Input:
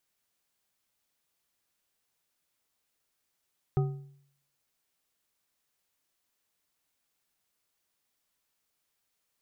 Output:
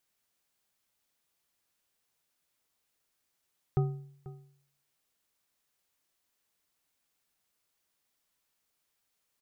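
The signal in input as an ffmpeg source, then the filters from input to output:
-f lavfi -i "aevalsrc='0.0891*pow(10,-3*t/0.65)*sin(2*PI*140*t)+0.0398*pow(10,-3*t/0.479)*sin(2*PI*386*t)+0.0178*pow(10,-3*t/0.392)*sin(2*PI*756.6*t)+0.00794*pow(10,-3*t/0.337)*sin(2*PI*1250.6*t)':duration=1.55:sample_rate=44100"
-filter_complex "[0:a]asplit=2[link_01][link_02];[link_02]adelay=489.8,volume=-17dB,highshelf=frequency=4000:gain=-11[link_03];[link_01][link_03]amix=inputs=2:normalize=0"

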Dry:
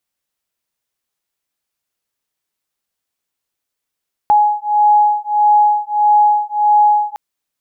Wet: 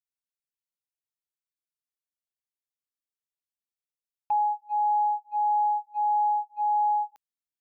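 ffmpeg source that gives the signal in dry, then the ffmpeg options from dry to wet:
-f lavfi -i "aevalsrc='0.237*(sin(2*PI*836*t)+sin(2*PI*837.6*t))':duration=2.86:sample_rate=44100"
-af "agate=range=-19dB:threshold=-17dB:ratio=16:detection=peak,equalizer=frequency=740:width_type=o:width=2.8:gain=-10.5,areverse,acompressor=threshold=-22dB:ratio=4,areverse"

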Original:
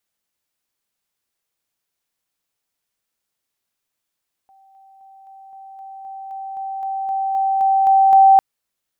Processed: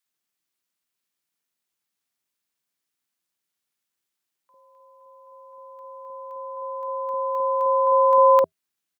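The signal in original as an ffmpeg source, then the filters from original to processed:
-f lavfi -i "aevalsrc='pow(10,(-48.5+3*floor(t/0.26))/20)*sin(2*PI*776*t)':duration=3.9:sample_rate=44100"
-filter_complex "[0:a]afftfilt=real='re*(1-between(b*sr/4096,160,400))':imag='im*(1-between(b*sr/4096,160,400))':win_size=4096:overlap=0.75,aeval=exprs='val(0)*sin(2*PI*240*n/s)':channel_layout=same,acrossover=split=750[link_01][link_02];[link_01]adelay=50[link_03];[link_03][link_02]amix=inputs=2:normalize=0"

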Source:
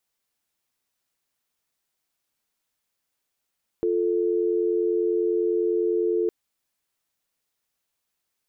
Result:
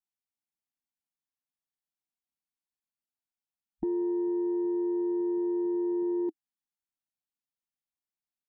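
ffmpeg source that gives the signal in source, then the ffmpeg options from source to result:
-f lavfi -i "aevalsrc='0.0708*(sin(2*PI*350*t)+sin(2*PI*440*t))':duration=2.46:sample_rate=44100"
-af "afwtdn=0.0224,firequalizer=gain_entry='entry(120,0);entry(200,4);entry(320,3);entry(480,-29);entry(740,2);entry(1100,-4)':delay=0.05:min_phase=1"

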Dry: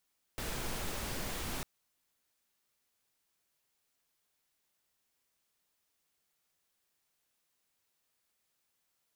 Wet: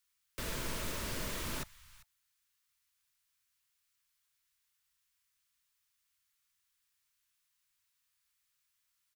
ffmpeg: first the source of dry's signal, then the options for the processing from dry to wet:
-f lavfi -i "anoisesrc=color=pink:amplitude=0.0646:duration=1.25:sample_rate=44100:seed=1"
-filter_complex "[0:a]asuperstop=centerf=770:order=20:qfactor=4.6,aecho=1:1:395:0.119,acrossover=split=130|950|2500[link_01][link_02][link_03][link_04];[link_02]acrusher=bits=7:mix=0:aa=0.000001[link_05];[link_01][link_05][link_03][link_04]amix=inputs=4:normalize=0"

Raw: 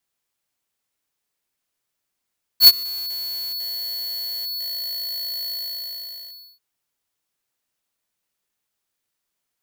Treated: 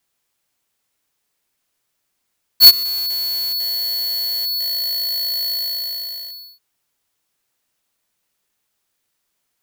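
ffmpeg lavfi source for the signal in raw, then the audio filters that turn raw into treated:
-f lavfi -i "aevalsrc='0.531*(2*lt(mod(4410*t,1),0.5)-1)':duration=3.99:sample_rate=44100,afade=type=in:duration=0.075,afade=type=out:start_time=0.075:duration=0.039:silence=0.0708,afade=type=out:start_time=2.91:duration=1.08"
-af "acontrast=71"

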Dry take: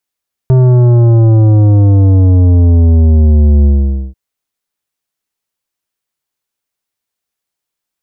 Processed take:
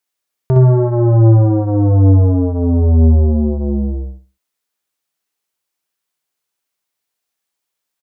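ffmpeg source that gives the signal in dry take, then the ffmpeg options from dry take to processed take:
-f lavfi -i "aevalsrc='0.562*clip((3.64-t)/0.49,0,1)*tanh(3.55*sin(2*PI*130*3.64/log(65/130)*(exp(log(65/130)*t/3.64)-1)))/tanh(3.55)':duration=3.64:sample_rate=44100"
-af "lowshelf=frequency=160:gain=-9,aecho=1:1:62|124|186|248:0.631|0.17|0.046|0.0124"

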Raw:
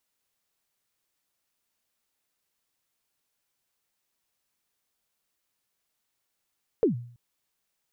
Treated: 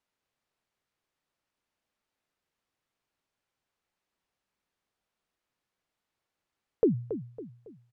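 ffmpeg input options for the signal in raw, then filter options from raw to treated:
-f lavfi -i "aevalsrc='0.168*pow(10,-3*t/0.53)*sin(2*PI*(500*0.119/log(120/500)*(exp(log(120/500)*min(t,0.119)/0.119)-1)+120*max(t-0.119,0)))':duration=0.33:sample_rate=44100"
-filter_complex "[0:a]aemphasis=mode=reproduction:type=75fm,asplit=2[link_01][link_02];[link_02]adelay=277,lowpass=frequency=1400:poles=1,volume=-10.5dB,asplit=2[link_03][link_04];[link_04]adelay=277,lowpass=frequency=1400:poles=1,volume=0.41,asplit=2[link_05][link_06];[link_06]adelay=277,lowpass=frequency=1400:poles=1,volume=0.41,asplit=2[link_07][link_08];[link_08]adelay=277,lowpass=frequency=1400:poles=1,volume=0.41[link_09];[link_01][link_03][link_05][link_07][link_09]amix=inputs=5:normalize=0"

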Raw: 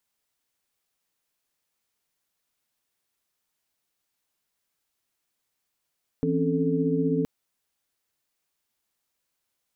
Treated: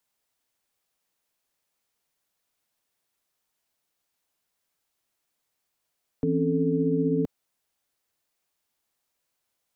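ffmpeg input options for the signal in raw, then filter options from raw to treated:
-f lavfi -i "aevalsrc='0.0447*(sin(2*PI*164.81*t)+sin(2*PI*261.63*t)+sin(2*PI*277.18*t)+sin(2*PI*440*t))':duration=1.02:sample_rate=44100"
-filter_complex "[0:a]equalizer=frequency=670:width=1.2:gain=3,acrossover=split=140|470[link_01][link_02][link_03];[link_03]alimiter=level_in=9.5dB:limit=-24dB:level=0:latency=1:release=35,volume=-9.5dB[link_04];[link_01][link_02][link_04]amix=inputs=3:normalize=0"

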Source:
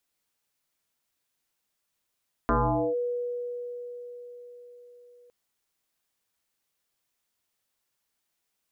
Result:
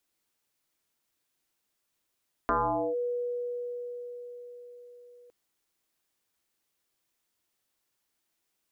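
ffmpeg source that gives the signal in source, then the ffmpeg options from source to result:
-f lavfi -i "aevalsrc='0.106*pow(10,-3*t/5)*sin(2*PI*486*t+5*clip(1-t/0.46,0,1)*sin(2*PI*0.37*486*t))':duration=2.81:sample_rate=44100"
-filter_complex "[0:a]equalizer=frequency=330:width_type=o:width=0.53:gain=5,acrossover=split=510[link_01][link_02];[link_01]acompressor=threshold=-37dB:ratio=6[link_03];[link_03][link_02]amix=inputs=2:normalize=0"

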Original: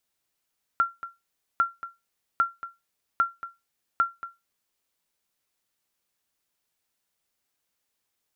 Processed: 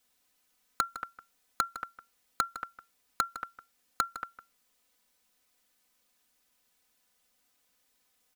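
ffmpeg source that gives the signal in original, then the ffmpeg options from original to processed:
-f lavfi -i "aevalsrc='0.211*(sin(2*PI*1370*mod(t,0.8))*exp(-6.91*mod(t,0.8)/0.21)+0.188*sin(2*PI*1370*max(mod(t,0.8)-0.23,0))*exp(-6.91*max(mod(t,0.8)-0.23,0)/0.21))':duration=4:sample_rate=44100"
-filter_complex "[0:a]aecho=1:1:4:0.83,asplit=2[link_01][link_02];[link_02]aeval=exprs='(mod(7.5*val(0)+1,2)-1)/7.5':channel_layout=same,volume=-4dB[link_03];[link_01][link_03]amix=inputs=2:normalize=0,asplit=2[link_04][link_05];[link_05]adelay=157.4,volume=-13dB,highshelf=frequency=4000:gain=-3.54[link_06];[link_04][link_06]amix=inputs=2:normalize=0"

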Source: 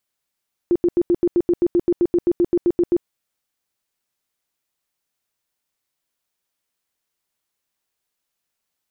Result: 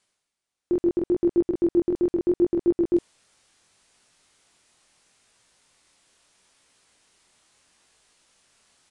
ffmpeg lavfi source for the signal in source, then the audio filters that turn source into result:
-f lavfi -i "aevalsrc='0.237*sin(2*PI*348*mod(t,0.13))*lt(mod(t,0.13),16/348)':duration=2.34:sample_rate=44100"
-af "areverse,acompressor=mode=upward:threshold=-39dB:ratio=2.5,areverse,flanger=delay=17.5:depth=7.7:speed=0.74,aresample=22050,aresample=44100"

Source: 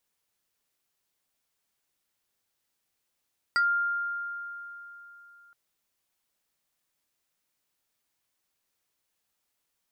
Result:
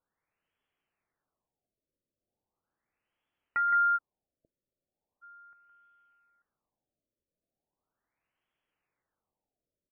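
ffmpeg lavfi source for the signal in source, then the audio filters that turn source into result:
-f lavfi -i "aevalsrc='0.1*pow(10,-3*t/3.43)*sin(2*PI*1400*t+0.9*pow(10,-3*t/0.14)*sin(2*PI*2.38*1400*t))':duration=1.97:sample_rate=44100"
-filter_complex "[0:a]asoftclip=type=tanh:threshold=-23.5dB,asplit=2[link_01][link_02];[link_02]aecho=0:1:120|165|187|889:0.112|0.473|0.106|0.15[link_03];[link_01][link_03]amix=inputs=2:normalize=0,afftfilt=real='re*lt(b*sr/1024,630*pow(3500/630,0.5+0.5*sin(2*PI*0.38*pts/sr)))':imag='im*lt(b*sr/1024,630*pow(3500/630,0.5+0.5*sin(2*PI*0.38*pts/sr)))':win_size=1024:overlap=0.75"

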